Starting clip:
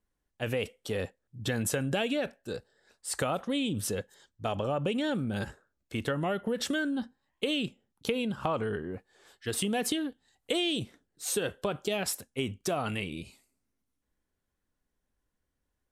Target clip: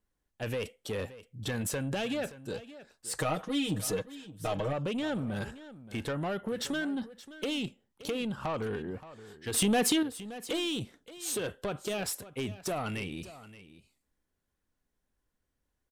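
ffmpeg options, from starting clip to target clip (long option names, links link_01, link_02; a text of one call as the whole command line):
ffmpeg -i in.wav -filter_complex "[0:a]asoftclip=type=tanh:threshold=-27.5dB,asettb=1/sr,asplit=3[link_01][link_02][link_03];[link_01]atrim=end=3.194[link_04];[link_02]atrim=start=3.19:end=4.73,asetpts=PTS-STARTPTS,afade=type=in:duration=0.004:curve=qsin,afade=type=out:start_time=1.536:duration=0.004:curve=qsin,aecho=1:1:6.4:0.87,atrim=end_sample=67914[link_05];[link_03]atrim=start=4.726[link_06];[link_04][link_05]acrossfade=duration=0.004:curve1=hsin:curve2=qsin[link_07];[link_07][link_06]acrossfade=duration=0.004:curve1=qsin:curve2=hsin,asettb=1/sr,asplit=3[link_08][link_09][link_10];[link_08]atrim=end=9.544[link_11];[link_09]atrim=start=9.54:end=10.03,asetpts=PTS-STARTPTS,afade=type=in:duration=0.004:curve=qsin,afade=type=out:start_time=0.486:duration=0.004:curve=qsin,acontrast=82[link_12];[link_10]atrim=start=10.026[link_13];[link_11][link_12]acrossfade=duration=0.004:curve1=hsin:curve2=qsin[link_14];[link_14][link_13]acrossfade=duration=0.004:curve1=qsin:curve2=hsin,aecho=1:1:574:0.158" out.wav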